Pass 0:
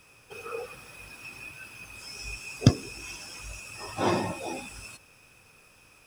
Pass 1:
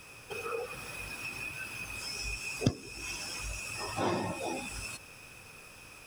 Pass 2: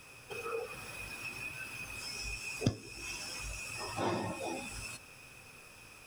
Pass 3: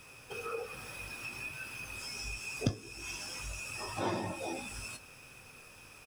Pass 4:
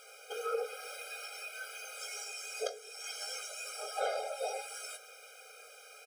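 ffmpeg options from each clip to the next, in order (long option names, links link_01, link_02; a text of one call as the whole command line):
ffmpeg -i in.wav -af "acompressor=threshold=-44dB:ratio=2,volume=6dB" out.wav
ffmpeg -i in.wav -af "flanger=delay=7.6:depth=1.7:regen=80:speed=0.57:shape=sinusoidal,volume=1.5dB" out.wav
ffmpeg -i in.wav -filter_complex "[0:a]asplit=2[link_01][link_02];[link_02]adelay=21,volume=-13dB[link_03];[link_01][link_03]amix=inputs=2:normalize=0" out.wav
ffmpeg -i in.wav -af "afftfilt=real='re*eq(mod(floor(b*sr/1024/410),2),1)':imag='im*eq(mod(floor(b*sr/1024/410),2),1)':win_size=1024:overlap=0.75,volume=5dB" out.wav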